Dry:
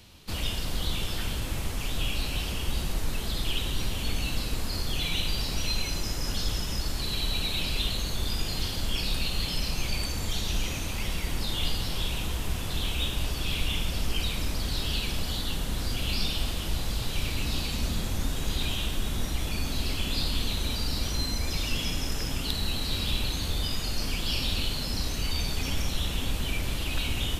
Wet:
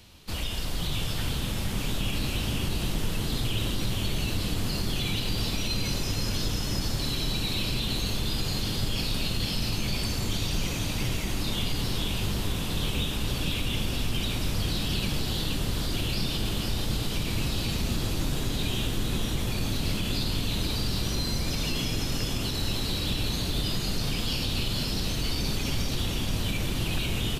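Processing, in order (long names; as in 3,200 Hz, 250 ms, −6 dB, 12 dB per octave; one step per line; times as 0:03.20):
brickwall limiter −20 dBFS, peak gain reduction 8.5 dB
on a send: echo with shifted repeats 478 ms, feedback 53%, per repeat +92 Hz, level −5.5 dB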